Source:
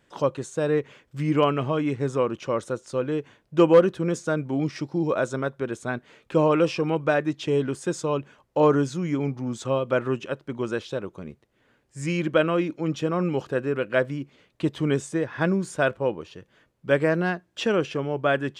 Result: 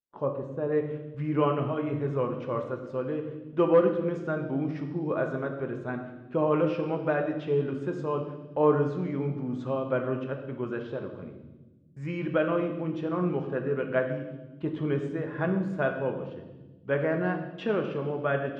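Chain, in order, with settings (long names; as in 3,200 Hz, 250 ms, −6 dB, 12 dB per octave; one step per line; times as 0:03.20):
noise gate −44 dBFS, range −34 dB
low-pass filter 1,100 Hz 12 dB per octave, from 0:00.72 2,100 Hz
convolution reverb RT60 1.2 s, pre-delay 5 ms, DRR 3.5 dB
level −6 dB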